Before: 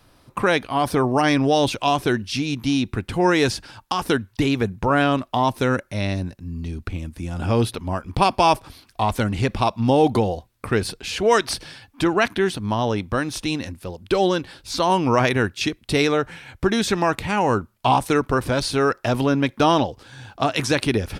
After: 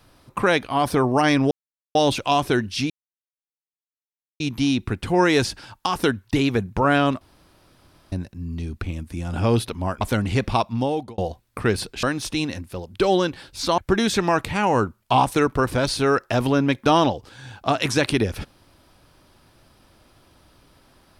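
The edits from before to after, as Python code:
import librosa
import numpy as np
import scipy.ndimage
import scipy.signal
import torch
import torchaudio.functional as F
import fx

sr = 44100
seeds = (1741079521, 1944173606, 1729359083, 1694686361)

y = fx.edit(x, sr, fx.insert_silence(at_s=1.51, length_s=0.44),
    fx.insert_silence(at_s=2.46, length_s=1.5),
    fx.room_tone_fill(start_s=5.27, length_s=0.91),
    fx.cut(start_s=8.07, length_s=1.01),
    fx.fade_out_span(start_s=9.61, length_s=0.64),
    fx.cut(start_s=11.1, length_s=2.04),
    fx.cut(start_s=14.89, length_s=1.63), tone=tone)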